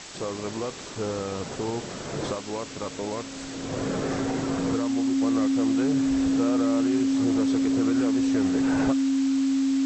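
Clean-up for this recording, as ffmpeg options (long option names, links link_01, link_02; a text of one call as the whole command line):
ffmpeg -i in.wav -af "bandreject=frequency=270:width=30,afwtdn=0.013" out.wav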